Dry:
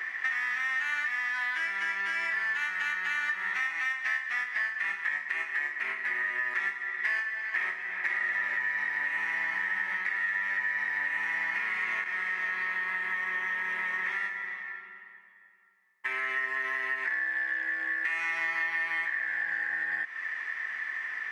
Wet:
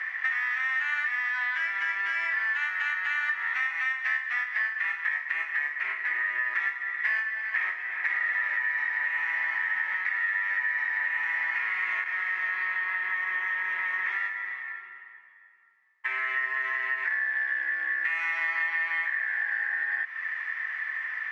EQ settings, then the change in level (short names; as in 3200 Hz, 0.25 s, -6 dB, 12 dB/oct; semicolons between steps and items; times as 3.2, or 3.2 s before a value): band-pass 1600 Hz, Q 0.65; +2.5 dB